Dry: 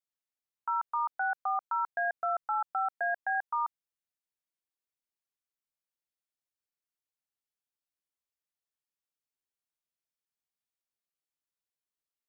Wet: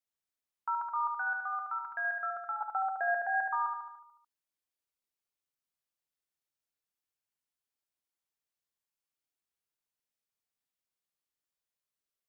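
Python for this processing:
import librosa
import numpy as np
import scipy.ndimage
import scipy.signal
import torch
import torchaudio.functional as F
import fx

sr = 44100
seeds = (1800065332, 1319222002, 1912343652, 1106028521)

y = fx.band_shelf(x, sr, hz=600.0, db=-11.0, octaves=1.7, at=(1.18, 2.61))
y = fx.echo_feedback(y, sr, ms=73, feedback_pct=58, wet_db=-4.5)
y = y * librosa.db_to_amplitude(-1.5)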